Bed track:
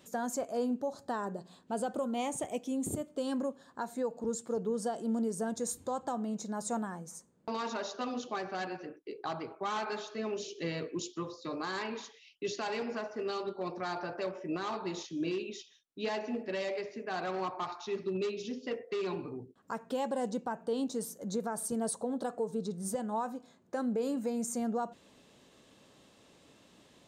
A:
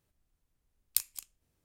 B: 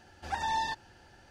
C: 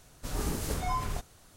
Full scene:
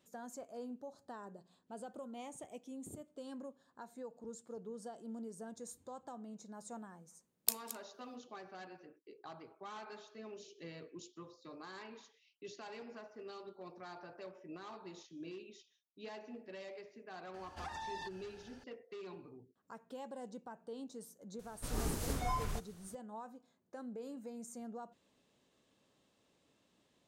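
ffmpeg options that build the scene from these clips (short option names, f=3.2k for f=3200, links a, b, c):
-filter_complex "[0:a]volume=-13.5dB[a];[1:a]highpass=480[b];[2:a]acompressor=threshold=-39dB:ratio=6:attack=3.2:release=140:knee=1:detection=peak[c];[b]atrim=end=1.64,asetpts=PTS-STARTPTS,volume=-3.5dB,afade=t=in:d=0.004:c=hsin,afade=t=out:st=1.636:d=0.004:c=hsin,adelay=6520[d];[c]atrim=end=1.3,asetpts=PTS-STARTPTS,volume=-3dB,afade=t=in:d=0.004:c=hsin,afade=t=out:st=1.296:d=0.004:c=hsin,adelay=17340[e];[3:a]atrim=end=1.56,asetpts=PTS-STARTPTS,volume=-5dB,afade=t=in:d=0.004:c=hsin,afade=t=out:st=1.556:d=0.004:c=hsin,adelay=21390[f];[a][d][e][f]amix=inputs=4:normalize=0"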